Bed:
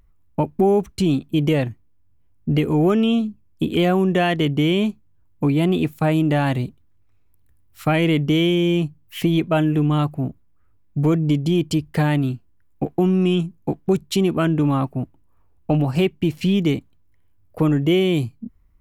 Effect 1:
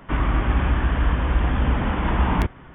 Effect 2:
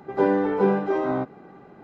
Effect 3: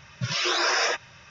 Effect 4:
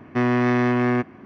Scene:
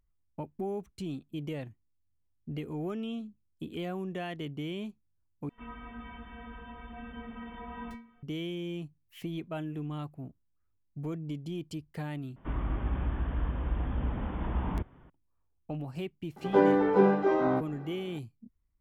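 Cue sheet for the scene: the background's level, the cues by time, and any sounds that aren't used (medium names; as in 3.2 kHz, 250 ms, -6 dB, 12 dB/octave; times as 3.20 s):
bed -18.5 dB
5.49 s: replace with 1 -4 dB + inharmonic resonator 230 Hz, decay 0.46 s, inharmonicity 0.008
12.36 s: replace with 1 -11 dB + peaking EQ 2.3 kHz -8 dB 2.4 oct
16.36 s: add 2 -2 dB
not used: 3, 4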